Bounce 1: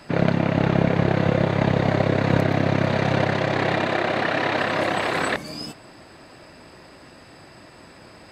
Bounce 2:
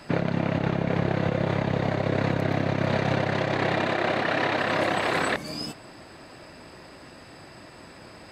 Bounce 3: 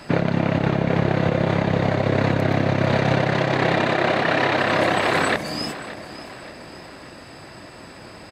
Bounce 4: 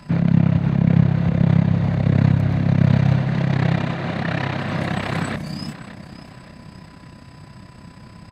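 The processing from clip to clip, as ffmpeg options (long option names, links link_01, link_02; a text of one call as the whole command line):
ffmpeg -i in.wav -af "alimiter=limit=-14dB:level=0:latency=1:release=136" out.wav
ffmpeg -i in.wav -af "aecho=1:1:576|1152|1728|2304:0.178|0.0818|0.0376|0.0173,volume=5dB" out.wav
ffmpeg -i in.wav -af "aeval=exprs='val(0)+0.00562*sin(2*PI*1000*n/s)':channel_layout=same,tremolo=f=32:d=0.571,lowshelf=frequency=260:width_type=q:width=1.5:gain=11.5,volume=-4.5dB" out.wav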